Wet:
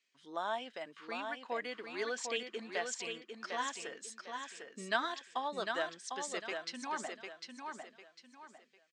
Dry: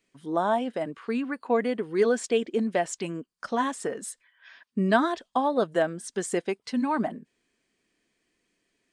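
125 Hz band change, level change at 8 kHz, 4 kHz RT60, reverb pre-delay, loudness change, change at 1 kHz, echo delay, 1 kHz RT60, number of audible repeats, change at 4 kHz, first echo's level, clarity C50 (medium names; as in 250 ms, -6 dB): -23.0 dB, -6.0 dB, no reverb, no reverb, -12.0 dB, -10.0 dB, 751 ms, no reverb, 3, -1.0 dB, -5.5 dB, no reverb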